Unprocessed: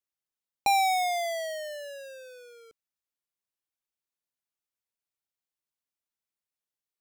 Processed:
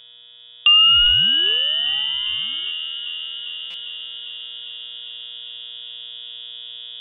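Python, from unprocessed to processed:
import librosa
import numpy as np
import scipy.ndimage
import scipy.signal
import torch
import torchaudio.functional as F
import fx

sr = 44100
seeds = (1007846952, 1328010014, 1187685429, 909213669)

p1 = fx.tilt_shelf(x, sr, db=8.5, hz=1100.0)
p2 = fx.dmg_buzz(p1, sr, base_hz=120.0, harmonics=5, level_db=-54.0, tilt_db=-3, odd_only=False)
p3 = fx.quant_companded(p2, sr, bits=4)
p4 = p2 + (p3 * librosa.db_to_amplitude(-7.0))
p5 = fx.freq_invert(p4, sr, carrier_hz=3600)
p6 = fx.low_shelf(p5, sr, hz=410.0, db=7.5)
p7 = p6 + fx.echo_wet_highpass(p6, sr, ms=400, feedback_pct=76, hz=2200.0, wet_db=-13, dry=0)
p8 = fx.rider(p7, sr, range_db=3, speed_s=2.0)
p9 = fx.buffer_glitch(p8, sr, at_s=(3.7,), block=256, repeats=6)
y = p9 * librosa.db_to_amplitude(7.5)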